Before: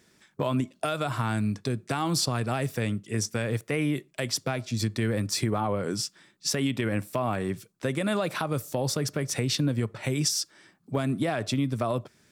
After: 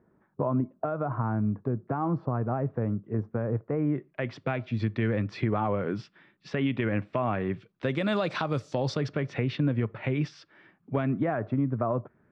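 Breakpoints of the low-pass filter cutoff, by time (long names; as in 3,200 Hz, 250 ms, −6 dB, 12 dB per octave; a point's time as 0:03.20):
low-pass filter 24 dB per octave
0:03.77 1,200 Hz
0:04.38 2,800 Hz
0:07.53 2,800 Hz
0:08.09 5,100 Hz
0:08.74 5,100 Hz
0:09.40 2,700 Hz
0:10.97 2,700 Hz
0:11.44 1,500 Hz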